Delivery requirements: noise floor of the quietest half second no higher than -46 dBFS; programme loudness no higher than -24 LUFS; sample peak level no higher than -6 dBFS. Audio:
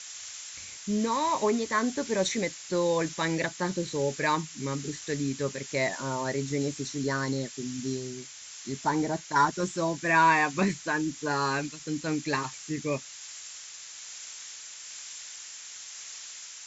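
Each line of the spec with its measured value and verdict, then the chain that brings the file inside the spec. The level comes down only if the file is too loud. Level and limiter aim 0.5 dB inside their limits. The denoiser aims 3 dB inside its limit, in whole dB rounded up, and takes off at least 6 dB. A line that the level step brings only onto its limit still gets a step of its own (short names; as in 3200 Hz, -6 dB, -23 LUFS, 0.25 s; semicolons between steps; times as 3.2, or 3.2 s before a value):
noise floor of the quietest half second -44 dBFS: fail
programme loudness -29.5 LUFS: OK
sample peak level -11.0 dBFS: OK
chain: denoiser 6 dB, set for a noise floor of -44 dBFS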